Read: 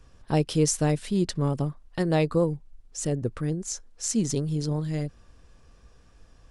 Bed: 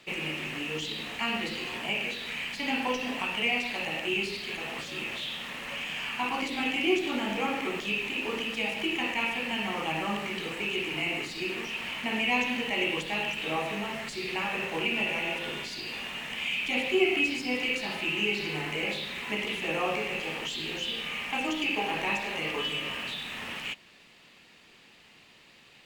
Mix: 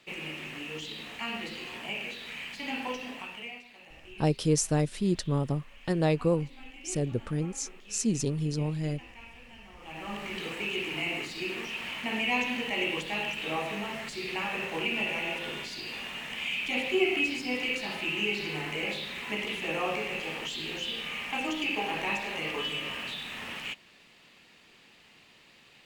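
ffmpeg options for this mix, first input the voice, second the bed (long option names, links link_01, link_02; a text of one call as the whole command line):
ffmpeg -i stem1.wav -i stem2.wav -filter_complex "[0:a]adelay=3900,volume=-2.5dB[link_01];[1:a]volume=13.5dB,afade=type=out:start_time=2.88:duration=0.76:silence=0.177828,afade=type=in:start_time=9.79:duration=0.64:silence=0.11885[link_02];[link_01][link_02]amix=inputs=2:normalize=0" out.wav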